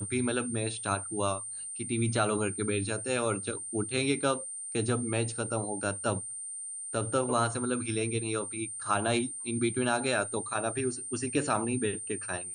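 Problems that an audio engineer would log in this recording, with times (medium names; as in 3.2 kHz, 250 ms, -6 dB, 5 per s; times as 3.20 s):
whine 8.9 kHz -37 dBFS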